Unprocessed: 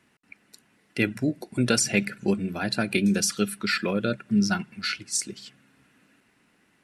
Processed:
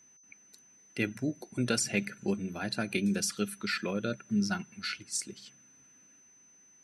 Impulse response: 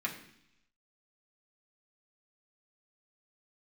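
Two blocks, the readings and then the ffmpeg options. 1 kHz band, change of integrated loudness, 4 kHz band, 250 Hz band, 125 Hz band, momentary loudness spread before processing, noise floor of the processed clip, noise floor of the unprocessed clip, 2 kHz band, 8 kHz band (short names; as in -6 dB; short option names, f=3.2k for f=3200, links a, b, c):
-7.0 dB, -7.0 dB, -7.0 dB, -7.0 dB, -7.0 dB, 7 LU, -61 dBFS, -66 dBFS, -7.0 dB, -7.0 dB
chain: -af "aeval=exprs='val(0)+0.00282*sin(2*PI*6100*n/s)':c=same,volume=-7dB"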